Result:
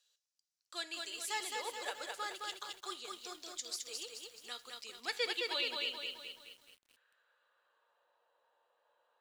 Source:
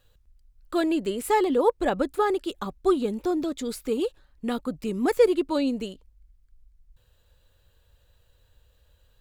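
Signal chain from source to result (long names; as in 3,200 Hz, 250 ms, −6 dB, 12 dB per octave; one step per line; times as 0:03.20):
Chebyshev high-pass filter 480 Hz, order 2
dynamic equaliser 2,000 Hz, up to +5 dB, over −42 dBFS, Q 1
band-pass filter sweep 5,700 Hz → 920 Hz, 0:04.50–0:08.18
on a send at −13 dB: convolution reverb RT60 0.55 s, pre-delay 6 ms
on the sum: feedback echo at a low word length 214 ms, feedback 55%, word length 11 bits, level −3 dB
level +4.5 dB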